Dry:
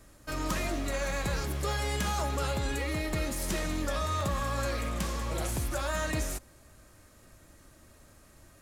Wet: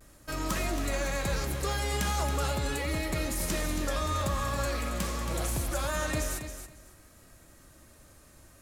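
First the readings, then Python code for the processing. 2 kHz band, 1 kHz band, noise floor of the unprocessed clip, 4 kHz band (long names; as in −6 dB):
+1.0 dB, +0.5 dB, −58 dBFS, +1.5 dB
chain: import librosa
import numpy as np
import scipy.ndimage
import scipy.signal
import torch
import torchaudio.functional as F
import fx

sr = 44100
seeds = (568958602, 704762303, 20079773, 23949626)

y = fx.high_shelf(x, sr, hz=7500.0, db=4.0)
y = fx.vibrato(y, sr, rate_hz=0.46, depth_cents=29.0)
y = fx.echo_feedback(y, sr, ms=275, feedback_pct=18, wet_db=-9.0)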